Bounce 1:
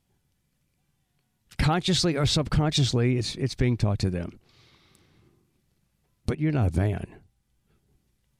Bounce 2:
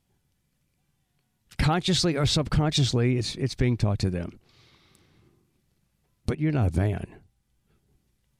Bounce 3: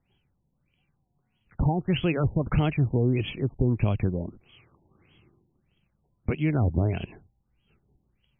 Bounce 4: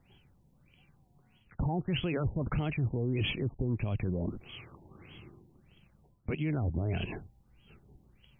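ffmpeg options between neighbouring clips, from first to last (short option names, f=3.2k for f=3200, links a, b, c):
-af anull
-filter_complex "[0:a]acrossover=split=380[a][b];[b]acompressor=threshold=-25dB:ratio=6[c];[a][c]amix=inputs=2:normalize=0,aexciter=amount=7.9:drive=4.8:freq=2.7k,afftfilt=real='re*lt(b*sr/1024,980*pow(3400/980,0.5+0.5*sin(2*PI*1.6*pts/sr)))':imag='im*lt(b*sr/1024,980*pow(3400/980,0.5+0.5*sin(2*PI*1.6*pts/sr)))':win_size=1024:overlap=0.75"
-af "areverse,acompressor=threshold=-33dB:ratio=5,areverse,alimiter=level_in=8dB:limit=-24dB:level=0:latency=1:release=20,volume=-8dB,volume=8.5dB"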